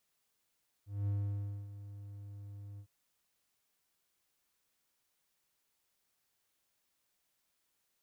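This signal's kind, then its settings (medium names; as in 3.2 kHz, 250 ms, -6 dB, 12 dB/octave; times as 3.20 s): ADSR triangle 101 Hz, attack 213 ms, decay 600 ms, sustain -14.5 dB, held 1.93 s, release 77 ms -28.5 dBFS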